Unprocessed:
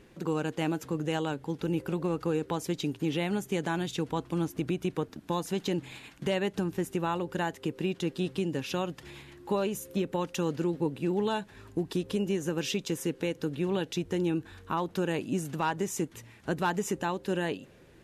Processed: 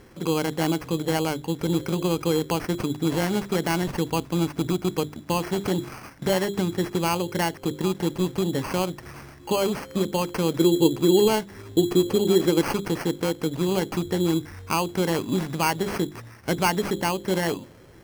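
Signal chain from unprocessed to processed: peaking EQ 99 Hz +7.5 dB 0.34 oct; hum notches 50/100/150/200/250/300/350/400 Hz; 10.57–12.62 s: peaking EQ 360 Hz +8 dB 0.63 oct; sample-and-hold 12×; trim +6.5 dB

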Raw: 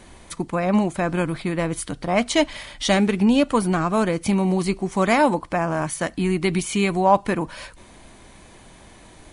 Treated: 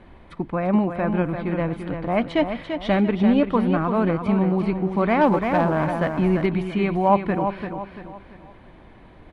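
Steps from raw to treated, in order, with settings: distance through air 460 m; feedback delay 341 ms, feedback 39%, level -7.5 dB; 5.21–6.46 s: waveshaping leveller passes 1

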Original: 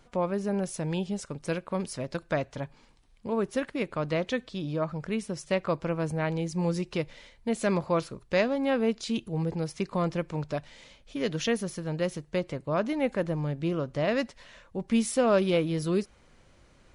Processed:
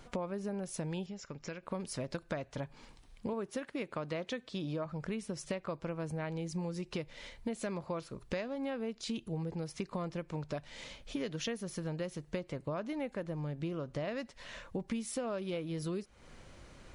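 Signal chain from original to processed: 3.33–4.86 s: high-pass 140 Hz 6 dB/octave; compression 10:1, threshold -39 dBFS, peak gain reduction 20.5 dB; 1.06–1.63 s: rippled Chebyshev low-pass 7.3 kHz, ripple 6 dB; trim +4.5 dB

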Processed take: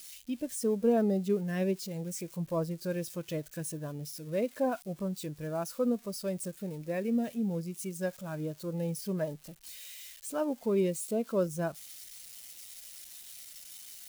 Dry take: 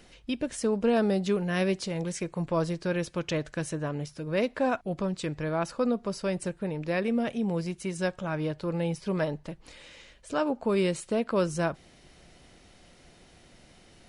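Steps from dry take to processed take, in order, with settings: zero-crossing glitches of -22.5 dBFS; spectral contrast expander 1.5:1; trim -2 dB

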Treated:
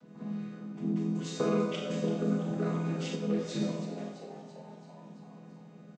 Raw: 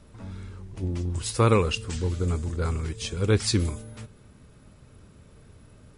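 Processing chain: vocoder on a held chord major triad, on E3; compression 5:1, threshold -28 dBFS, peak gain reduction 11.5 dB; frequency-shifting echo 335 ms, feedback 60%, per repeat +100 Hz, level -14.5 dB; Schroeder reverb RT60 0.78 s, combs from 27 ms, DRR -0.5 dB; 3.15–3.60 s: detune thickener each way 18 cents -> 33 cents

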